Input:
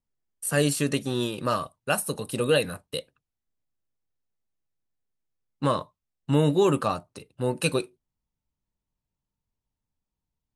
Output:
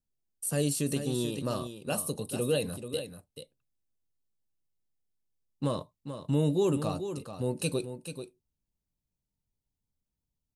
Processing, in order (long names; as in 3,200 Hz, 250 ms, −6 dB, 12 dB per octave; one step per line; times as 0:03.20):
parametric band 1,500 Hz −12.5 dB 1.7 octaves
in parallel at 0 dB: brickwall limiter −22.5 dBFS, peak gain reduction 10.5 dB
on the sum: single-tap delay 436 ms −9.5 dB
level −7 dB